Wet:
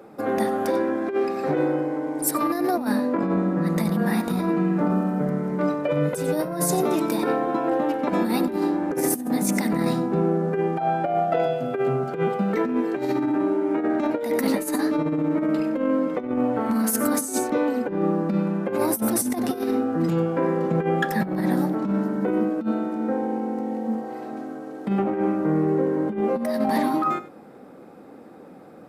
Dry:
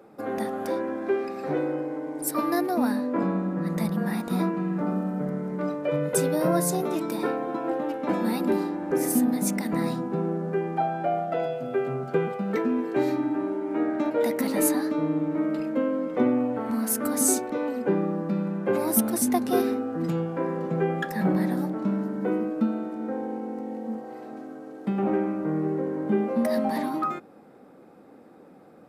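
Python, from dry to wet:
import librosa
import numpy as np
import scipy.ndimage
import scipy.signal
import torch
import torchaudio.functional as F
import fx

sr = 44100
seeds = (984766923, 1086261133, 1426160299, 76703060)

p1 = x + fx.echo_single(x, sr, ms=94, db=-15.5, dry=0)
p2 = fx.over_compress(p1, sr, threshold_db=-26.0, ratio=-0.5)
y = p2 * 10.0 ** (4.5 / 20.0)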